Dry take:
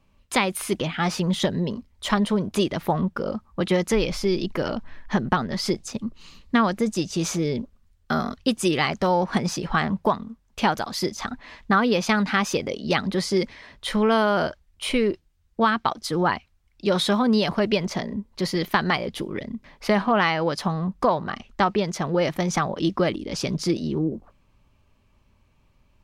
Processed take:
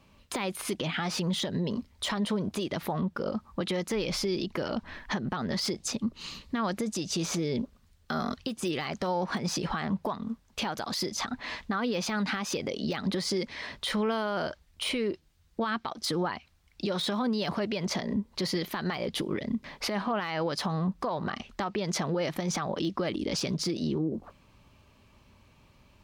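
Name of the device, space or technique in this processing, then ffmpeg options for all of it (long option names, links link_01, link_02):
broadcast voice chain: -af "highpass=frequency=87:poles=1,deesser=0.65,acompressor=threshold=-27dB:ratio=4,equalizer=frequency=4200:width_type=o:width=0.82:gain=3,alimiter=level_in=3.5dB:limit=-24dB:level=0:latency=1:release=186,volume=-3.5dB,volume=6dB"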